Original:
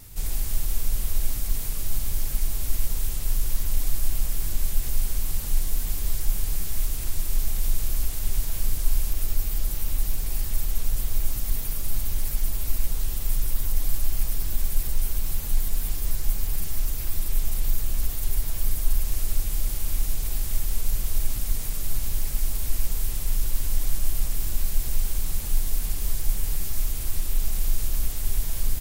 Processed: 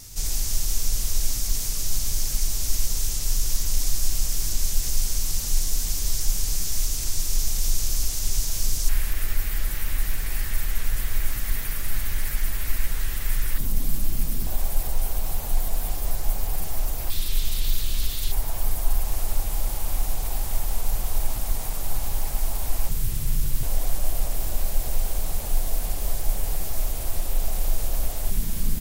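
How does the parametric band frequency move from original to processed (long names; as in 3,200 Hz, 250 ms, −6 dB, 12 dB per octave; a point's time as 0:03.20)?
parametric band +13 dB 1.1 octaves
5,900 Hz
from 0:08.89 1,800 Hz
from 0:13.58 210 Hz
from 0:14.47 720 Hz
from 0:17.10 3,700 Hz
from 0:18.32 780 Hz
from 0:22.89 130 Hz
from 0:23.63 660 Hz
from 0:28.30 200 Hz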